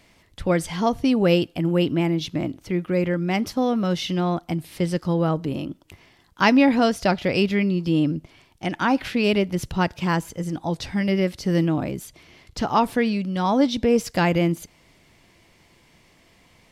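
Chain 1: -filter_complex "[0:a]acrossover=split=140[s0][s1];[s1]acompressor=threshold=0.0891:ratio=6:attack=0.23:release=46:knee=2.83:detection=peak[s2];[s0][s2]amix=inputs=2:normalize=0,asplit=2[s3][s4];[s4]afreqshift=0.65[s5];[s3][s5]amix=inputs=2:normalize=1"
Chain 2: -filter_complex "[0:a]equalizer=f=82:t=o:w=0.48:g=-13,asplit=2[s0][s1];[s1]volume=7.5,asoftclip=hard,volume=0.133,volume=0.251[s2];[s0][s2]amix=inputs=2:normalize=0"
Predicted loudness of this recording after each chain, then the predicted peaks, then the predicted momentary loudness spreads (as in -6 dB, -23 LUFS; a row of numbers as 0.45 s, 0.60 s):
-30.5 LUFS, -21.5 LUFS; -17.0 dBFS, -4.0 dBFS; 9 LU, 10 LU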